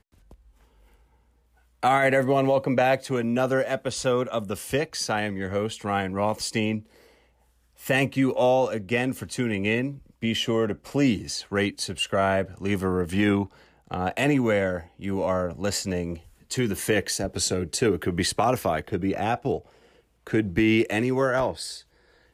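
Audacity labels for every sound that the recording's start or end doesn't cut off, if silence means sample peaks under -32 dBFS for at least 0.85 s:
1.830000	6.790000	sound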